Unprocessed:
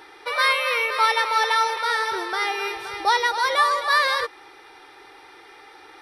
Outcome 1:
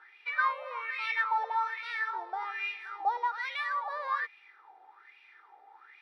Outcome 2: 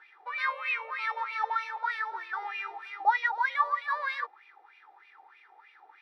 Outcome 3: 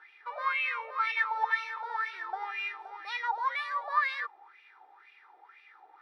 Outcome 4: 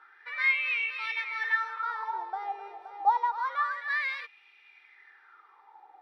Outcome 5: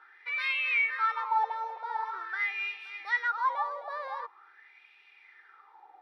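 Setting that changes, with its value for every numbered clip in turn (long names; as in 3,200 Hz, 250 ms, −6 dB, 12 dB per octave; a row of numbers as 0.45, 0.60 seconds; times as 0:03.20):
LFO wah, speed: 1.2, 3.2, 2, 0.28, 0.45 Hertz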